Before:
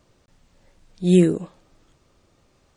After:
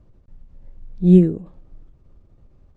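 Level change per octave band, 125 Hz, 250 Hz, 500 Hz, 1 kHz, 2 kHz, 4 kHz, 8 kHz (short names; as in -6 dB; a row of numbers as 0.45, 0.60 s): +5.0 dB, +3.5 dB, 0.0 dB, n/a, under -10 dB, under -10 dB, under -15 dB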